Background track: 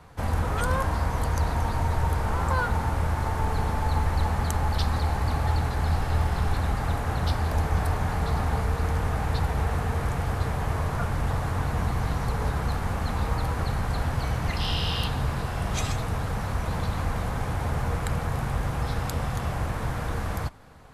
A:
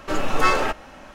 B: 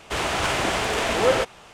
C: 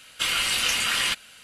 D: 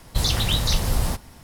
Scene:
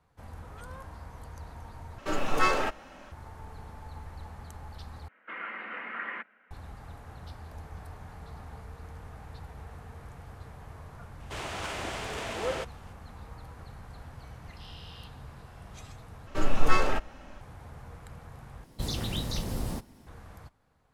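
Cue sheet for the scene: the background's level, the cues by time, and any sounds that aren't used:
background track -19 dB
1.98 replace with A -6 dB
5.08 replace with C -6.5 dB + Chebyshev band-pass 200–2000 Hz, order 4
11.2 add B -12.5 dB
16.27 replace with A -8 dB + low shelf 150 Hz +11.5 dB
18.64 replace with D -13 dB + bell 270 Hz +10 dB 2 oct

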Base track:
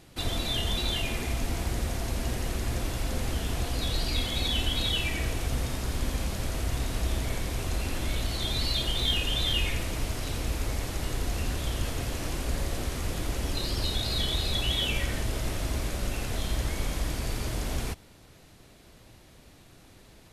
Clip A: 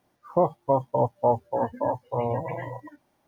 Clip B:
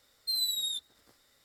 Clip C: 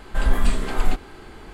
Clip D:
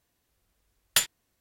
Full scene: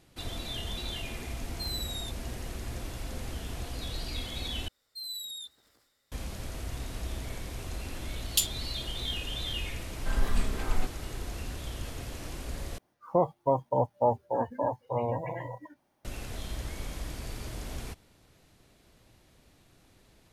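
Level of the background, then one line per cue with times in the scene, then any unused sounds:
base track -7.5 dB
1.32 add B -7 dB
4.68 replace with B -8.5 dB + transient shaper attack -2 dB, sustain +7 dB
7.41 add D -2 dB + steep high-pass 2900 Hz
9.91 add C -9 dB
12.78 replace with A -3.5 dB

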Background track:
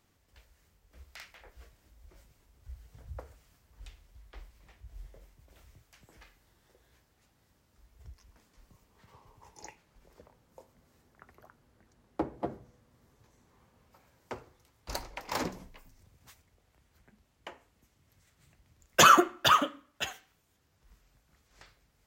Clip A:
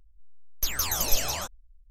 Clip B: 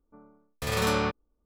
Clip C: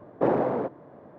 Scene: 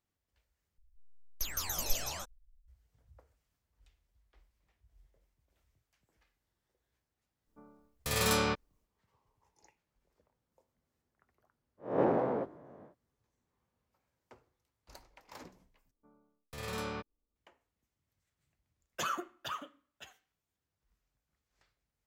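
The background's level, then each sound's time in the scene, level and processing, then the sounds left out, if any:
background track -17.5 dB
0.78 replace with A -9 dB
7.44 add B -4.5 dB, fades 0.05 s + high shelf 4300 Hz +9.5 dB
11.77 add C -7 dB, fades 0.10 s + spectral swells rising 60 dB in 0.49 s
15.91 replace with B -13 dB

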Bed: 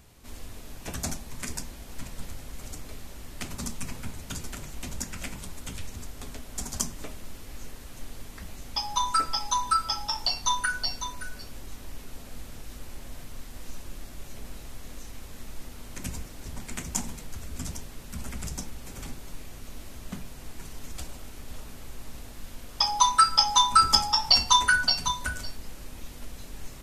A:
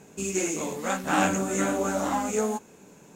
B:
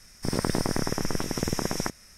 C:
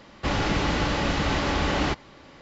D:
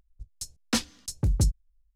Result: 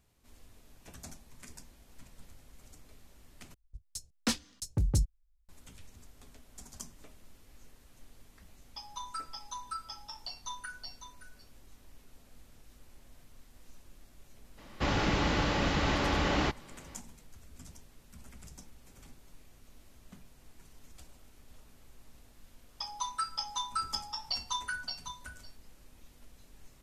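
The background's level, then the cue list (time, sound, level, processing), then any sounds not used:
bed -15.5 dB
3.54 replace with D -4.5 dB
14.57 add C -4.5 dB, fades 0.02 s
not used: A, B

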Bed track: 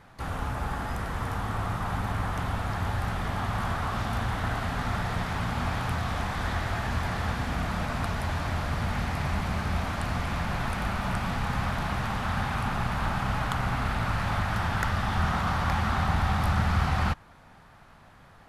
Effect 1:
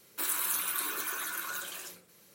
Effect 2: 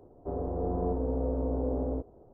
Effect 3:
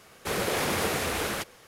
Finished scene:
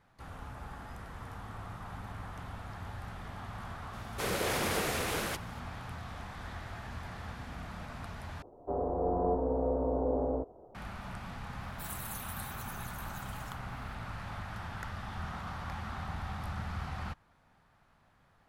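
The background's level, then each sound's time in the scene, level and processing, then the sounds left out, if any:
bed track -13.5 dB
3.93 add 3 -4.5 dB
8.42 replace with 2 -5 dB + bell 900 Hz +10.5 dB 2.4 oct
11.61 add 1 -12.5 dB

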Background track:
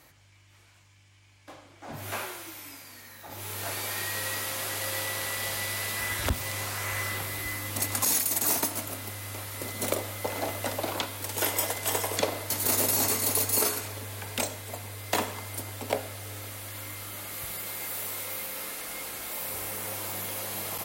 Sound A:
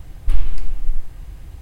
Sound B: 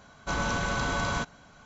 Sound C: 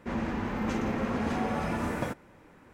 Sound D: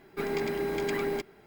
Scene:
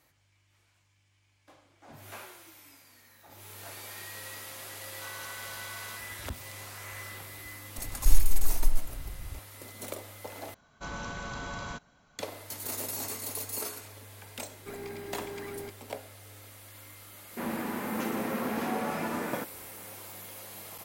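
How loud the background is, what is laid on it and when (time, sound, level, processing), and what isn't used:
background track -10.5 dB
4.74 add B -12 dB + HPF 1100 Hz
7.78 add A -5 dB
10.54 replace with B -9.5 dB
14.49 add D -11 dB + zero-crossing step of -46 dBFS
17.31 add C -0.5 dB + HPF 210 Hz

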